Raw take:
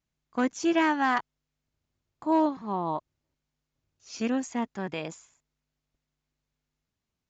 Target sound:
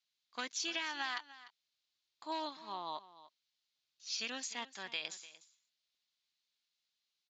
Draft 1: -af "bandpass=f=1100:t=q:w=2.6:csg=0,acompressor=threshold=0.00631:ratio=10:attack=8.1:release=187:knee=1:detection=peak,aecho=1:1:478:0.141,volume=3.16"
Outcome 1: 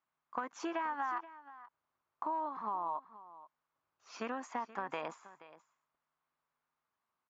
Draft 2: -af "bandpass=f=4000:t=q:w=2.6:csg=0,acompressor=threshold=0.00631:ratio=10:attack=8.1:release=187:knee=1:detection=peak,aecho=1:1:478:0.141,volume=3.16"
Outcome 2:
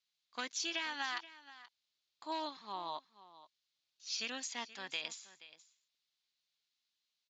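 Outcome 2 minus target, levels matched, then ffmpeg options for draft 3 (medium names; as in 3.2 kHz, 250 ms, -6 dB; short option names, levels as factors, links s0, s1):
echo 181 ms late
-af "bandpass=f=4000:t=q:w=2.6:csg=0,acompressor=threshold=0.00631:ratio=10:attack=8.1:release=187:knee=1:detection=peak,aecho=1:1:297:0.141,volume=3.16"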